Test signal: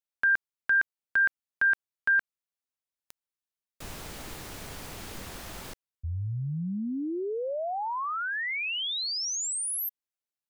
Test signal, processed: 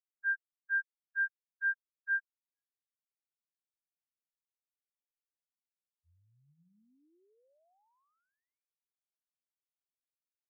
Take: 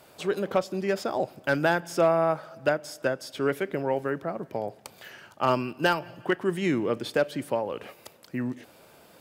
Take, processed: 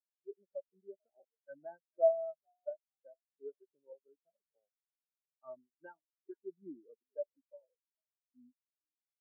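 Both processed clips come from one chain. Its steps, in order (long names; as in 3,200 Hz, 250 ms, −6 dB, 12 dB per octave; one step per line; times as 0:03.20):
dead-zone distortion −47.5 dBFS
on a send: echo with shifted repeats 442 ms, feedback 35%, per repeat +62 Hz, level −12.5 dB
on the sum: low-pass that shuts in the quiet parts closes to 450 Hz, open at −21.5 dBFS
every bin expanded away from the loudest bin 4 to 1
level −7.5 dB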